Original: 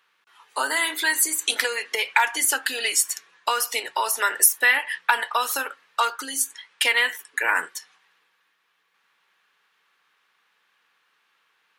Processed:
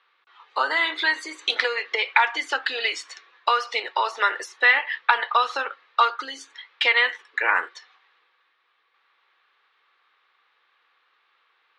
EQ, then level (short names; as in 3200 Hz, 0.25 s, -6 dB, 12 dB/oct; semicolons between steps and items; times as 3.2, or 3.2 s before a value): speaker cabinet 350–4600 Hz, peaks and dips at 350 Hz +6 dB, 510 Hz +5 dB, 770 Hz +4 dB, 1200 Hz +7 dB, 2100 Hz +4 dB, 3800 Hz +5 dB; -2.0 dB